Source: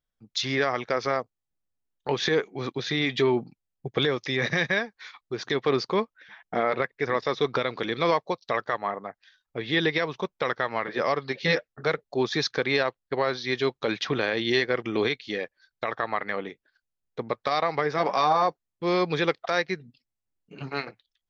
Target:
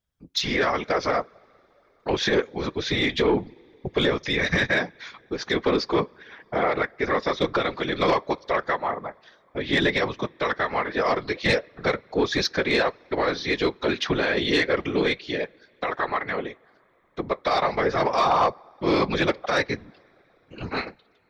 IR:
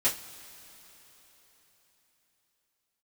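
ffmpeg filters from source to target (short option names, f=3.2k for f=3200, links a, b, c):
-filter_complex "[0:a]asplit=2[a][b];[1:a]atrim=start_sample=2205,highshelf=f=4.4k:g=-10.5[c];[b][c]afir=irnorm=-1:irlink=0,volume=-25.5dB[d];[a][d]amix=inputs=2:normalize=0,afftfilt=real='hypot(re,im)*cos(2*PI*random(0))':imag='hypot(re,im)*sin(2*PI*random(1))':win_size=512:overlap=0.75,aeval=exprs='0.224*sin(PI/2*1.78*val(0)/0.224)':c=same"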